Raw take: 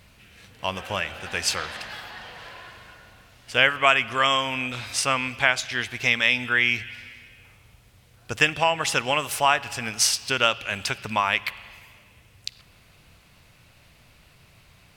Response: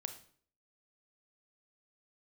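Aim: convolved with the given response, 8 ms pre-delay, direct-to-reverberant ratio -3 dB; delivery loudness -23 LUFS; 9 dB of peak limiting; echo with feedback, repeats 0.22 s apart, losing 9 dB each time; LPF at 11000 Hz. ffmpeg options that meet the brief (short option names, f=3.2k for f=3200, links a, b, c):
-filter_complex "[0:a]lowpass=11k,alimiter=limit=-12dB:level=0:latency=1,aecho=1:1:220|440|660|880:0.355|0.124|0.0435|0.0152,asplit=2[a][b];[1:a]atrim=start_sample=2205,adelay=8[c];[b][c]afir=irnorm=-1:irlink=0,volume=5dB[d];[a][d]amix=inputs=2:normalize=0,volume=-2dB"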